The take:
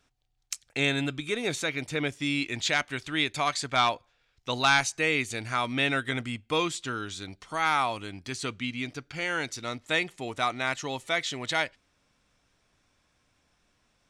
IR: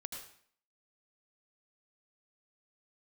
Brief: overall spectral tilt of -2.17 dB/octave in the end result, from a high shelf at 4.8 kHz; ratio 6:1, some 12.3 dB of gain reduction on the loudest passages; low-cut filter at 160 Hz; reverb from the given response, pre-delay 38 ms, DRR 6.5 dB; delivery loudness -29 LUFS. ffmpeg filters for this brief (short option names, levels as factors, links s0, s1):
-filter_complex "[0:a]highpass=160,highshelf=f=4800:g=6.5,acompressor=threshold=0.0316:ratio=6,asplit=2[s0][s1];[1:a]atrim=start_sample=2205,adelay=38[s2];[s1][s2]afir=irnorm=-1:irlink=0,volume=0.596[s3];[s0][s3]amix=inputs=2:normalize=0,volume=1.68"